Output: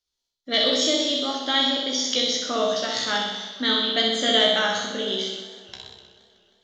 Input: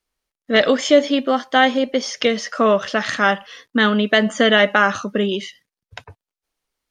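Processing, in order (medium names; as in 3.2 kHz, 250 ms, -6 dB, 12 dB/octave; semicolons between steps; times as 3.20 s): high-order bell 4.4 kHz +13 dB 1.3 oct; feedback comb 61 Hz, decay 0.44 s, harmonics all, mix 90%; flutter echo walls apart 11.2 m, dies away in 1.1 s; speed mistake 24 fps film run at 25 fps; modulated delay 157 ms, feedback 72%, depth 177 cents, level -20.5 dB; trim -2.5 dB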